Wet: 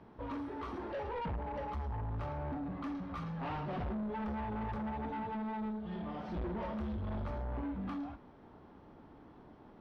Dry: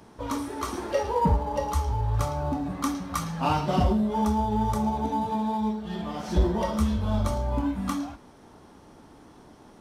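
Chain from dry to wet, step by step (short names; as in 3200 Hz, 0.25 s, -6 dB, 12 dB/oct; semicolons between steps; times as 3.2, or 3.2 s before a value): soft clip -30.5 dBFS, distortion -6 dB; air absorption 360 m; gain -4.5 dB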